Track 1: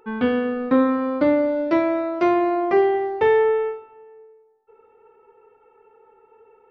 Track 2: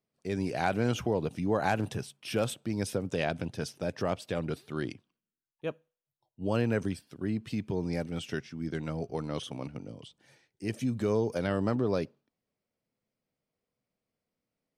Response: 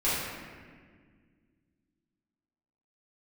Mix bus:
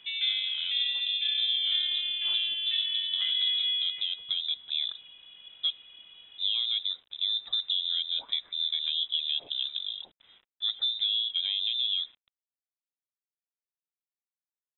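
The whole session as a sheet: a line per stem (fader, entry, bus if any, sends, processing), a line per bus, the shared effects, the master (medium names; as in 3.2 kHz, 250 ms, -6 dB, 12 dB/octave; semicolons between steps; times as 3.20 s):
+1.5 dB, 0.00 s, send -16.5 dB, elliptic low-pass 1.9 kHz, stop band 60 dB; compression 1.5:1, threshold -38 dBFS, peak gain reduction 9 dB; auto duck -8 dB, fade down 1.15 s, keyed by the second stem
-2.0 dB, 0.00 s, no send, graphic EQ 250/500/2000/4000/8000 Hz +5/+10/-6/-7/-7 dB; compression 12:1, threshold -26 dBFS, peak gain reduction 12 dB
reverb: on, RT60 1.7 s, pre-delay 3 ms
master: gain riding within 3 dB 2 s; bit crusher 10-bit; frequency inversion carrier 3.8 kHz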